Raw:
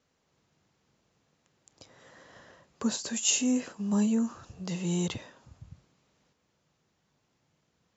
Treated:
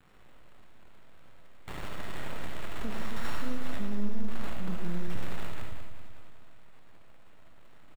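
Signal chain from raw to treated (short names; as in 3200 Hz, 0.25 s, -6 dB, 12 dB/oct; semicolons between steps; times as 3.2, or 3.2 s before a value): switching spikes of -26.5 dBFS; gate with hold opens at -26 dBFS; resonator bank C#2 sus4, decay 0.25 s; careless resampling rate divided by 8×, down none, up hold; high shelf 2500 Hz -10.5 dB; compressor 6:1, threshold -44 dBFS, peak gain reduction 15.5 dB; half-wave rectifier; tone controls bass +7 dB, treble +1 dB; feedback echo 0.19 s, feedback 52%, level -8.5 dB; reverb RT60 0.45 s, pre-delay 30 ms, DRR 3.5 dB; sustainer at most 23 dB/s; gain +9.5 dB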